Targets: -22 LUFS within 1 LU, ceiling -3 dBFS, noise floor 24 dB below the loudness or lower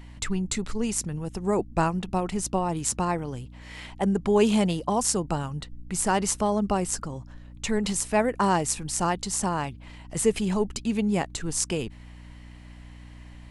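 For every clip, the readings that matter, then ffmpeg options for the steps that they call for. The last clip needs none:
hum 60 Hz; highest harmonic 300 Hz; hum level -43 dBFS; loudness -26.5 LUFS; peak level -6.5 dBFS; loudness target -22.0 LUFS
-> -af "bandreject=f=60:t=h:w=4,bandreject=f=120:t=h:w=4,bandreject=f=180:t=h:w=4,bandreject=f=240:t=h:w=4,bandreject=f=300:t=h:w=4"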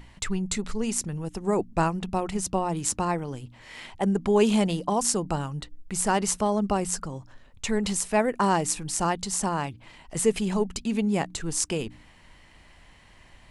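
hum not found; loudness -26.5 LUFS; peak level -6.0 dBFS; loudness target -22.0 LUFS
-> -af "volume=1.68,alimiter=limit=0.708:level=0:latency=1"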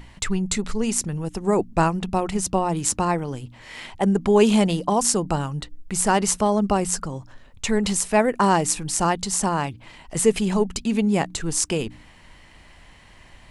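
loudness -22.0 LUFS; peak level -3.0 dBFS; noise floor -49 dBFS

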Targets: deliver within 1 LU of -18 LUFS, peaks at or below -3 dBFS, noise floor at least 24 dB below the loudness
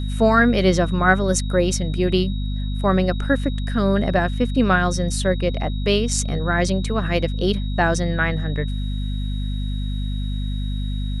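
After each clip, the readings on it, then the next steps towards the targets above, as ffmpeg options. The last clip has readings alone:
hum 50 Hz; highest harmonic 250 Hz; hum level -22 dBFS; steady tone 3.8 kHz; tone level -39 dBFS; loudness -21.0 LUFS; peak level -3.0 dBFS; loudness target -18.0 LUFS
-> -af "bandreject=f=50:t=h:w=6,bandreject=f=100:t=h:w=6,bandreject=f=150:t=h:w=6,bandreject=f=200:t=h:w=6,bandreject=f=250:t=h:w=6"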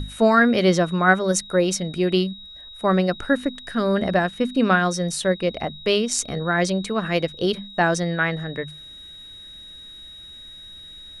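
hum not found; steady tone 3.8 kHz; tone level -39 dBFS
-> -af "bandreject=f=3800:w=30"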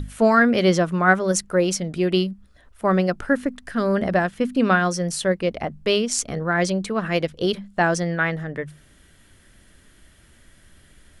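steady tone not found; loudness -21.5 LUFS; peak level -4.0 dBFS; loudness target -18.0 LUFS
-> -af "volume=1.5,alimiter=limit=0.708:level=0:latency=1"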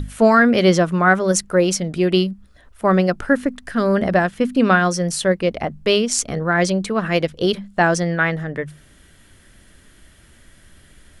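loudness -18.0 LUFS; peak level -3.0 dBFS; noise floor -51 dBFS

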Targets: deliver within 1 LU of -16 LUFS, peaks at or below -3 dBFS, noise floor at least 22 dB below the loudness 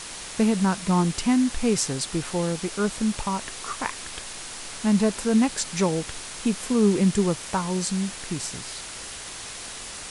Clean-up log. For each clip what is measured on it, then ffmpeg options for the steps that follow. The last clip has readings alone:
noise floor -38 dBFS; noise floor target -48 dBFS; loudness -25.5 LUFS; peak level -9.0 dBFS; loudness target -16.0 LUFS
-> -af "afftdn=nr=10:nf=-38"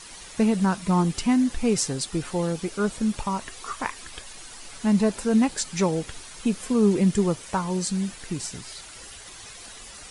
noise floor -43 dBFS; noise floor target -47 dBFS
-> -af "afftdn=nr=6:nf=-43"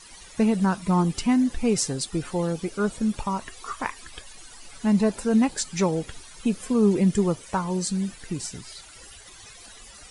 noise floor -47 dBFS; loudness -25.0 LUFS; peak level -9.0 dBFS; loudness target -16.0 LUFS
-> -af "volume=2.82,alimiter=limit=0.708:level=0:latency=1"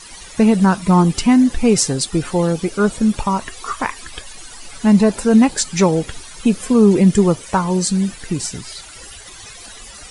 loudness -16.0 LUFS; peak level -3.0 dBFS; noise floor -38 dBFS

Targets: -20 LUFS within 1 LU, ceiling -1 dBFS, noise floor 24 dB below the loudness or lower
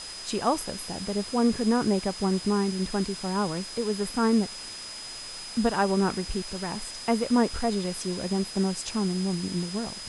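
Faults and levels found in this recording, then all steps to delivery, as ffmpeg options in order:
steady tone 5 kHz; tone level -39 dBFS; noise floor -40 dBFS; noise floor target -52 dBFS; loudness -27.5 LUFS; peak level -11.0 dBFS; loudness target -20.0 LUFS
-> -af "bandreject=f=5000:w=30"
-af "afftdn=nr=12:nf=-40"
-af "volume=2.37"

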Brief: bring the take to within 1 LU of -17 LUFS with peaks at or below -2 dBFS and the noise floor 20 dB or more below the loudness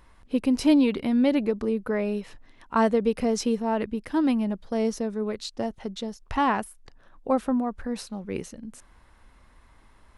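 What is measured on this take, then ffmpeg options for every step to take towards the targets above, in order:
loudness -26.0 LUFS; peak level -9.0 dBFS; loudness target -17.0 LUFS
-> -af "volume=2.82,alimiter=limit=0.794:level=0:latency=1"

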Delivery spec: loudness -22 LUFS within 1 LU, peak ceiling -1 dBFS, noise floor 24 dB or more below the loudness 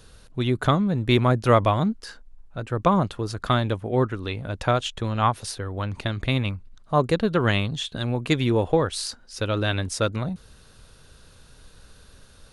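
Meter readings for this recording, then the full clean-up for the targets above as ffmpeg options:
loudness -24.0 LUFS; peak level -5.5 dBFS; loudness target -22.0 LUFS
-> -af "volume=1.26"

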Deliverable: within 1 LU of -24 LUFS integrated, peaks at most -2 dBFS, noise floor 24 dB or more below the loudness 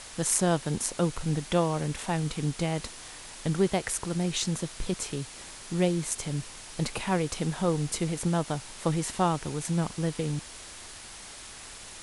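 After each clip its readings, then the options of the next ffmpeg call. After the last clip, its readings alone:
noise floor -45 dBFS; noise floor target -54 dBFS; loudness -29.5 LUFS; peak level -7.5 dBFS; loudness target -24.0 LUFS
-> -af "afftdn=nr=9:nf=-45"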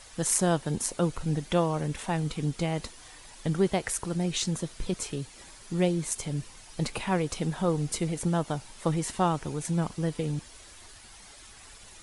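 noise floor -50 dBFS; noise floor target -54 dBFS
-> -af "afftdn=nr=6:nf=-50"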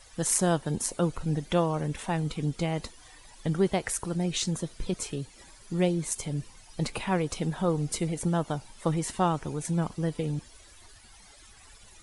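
noise floor -54 dBFS; loudness -29.5 LUFS; peak level -8.0 dBFS; loudness target -24.0 LUFS
-> -af "volume=1.88"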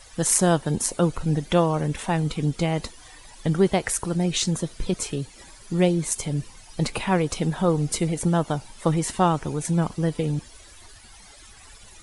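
loudness -24.0 LUFS; peak level -2.5 dBFS; noise floor -48 dBFS

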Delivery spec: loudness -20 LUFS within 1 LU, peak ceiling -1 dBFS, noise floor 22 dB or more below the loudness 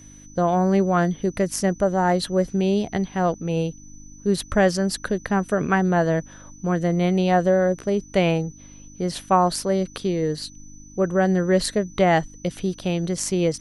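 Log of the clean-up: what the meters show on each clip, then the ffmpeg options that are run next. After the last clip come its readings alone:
hum 50 Hz; highest harmonic 300 Hz; hum level -46 dBFS; steady tone 6 kHz; tone level -47 dBFS; loudness -22.5 LUFS; peak level -5.5 dBFS; loudness target -20.0 LUFS
-> -af "bandreject=f=50:t=h:w=4,bandreject=f=100:t=h:w=4,bandreject=f=150:t=h:w=4,bandreject=f=200:t=h:w=4,bandreject=f=250:t=h:w=4,bandreject=f=300:t=h:w=4"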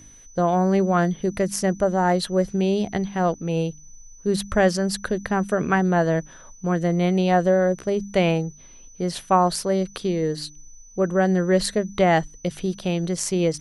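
hum not found; steady tone 6 kHz; tone level -47 dBFS
-> -af "bandreject=f=6000:w=30"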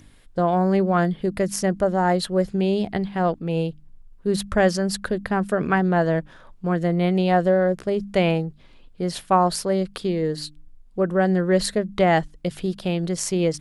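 steady tone not found; loudness -22.5 LUFS; peak level -5.5 dBFS; loudness target -20.0 LUFS
-> -af "volume=1.33"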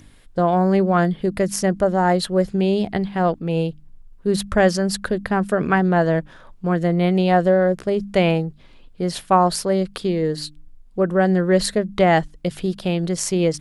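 loudness -20.0 LUFS; peak level -3.0 dBFS; noise floor -47 dBFS

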